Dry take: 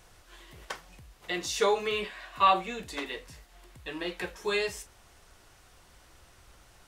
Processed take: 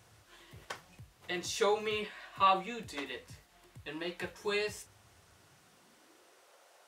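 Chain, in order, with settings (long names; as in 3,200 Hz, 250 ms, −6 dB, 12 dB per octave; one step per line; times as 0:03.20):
high-pass filter sweep 100 Hz → 540 Hz, 0:05.30–0:06.52
level −4.5 dB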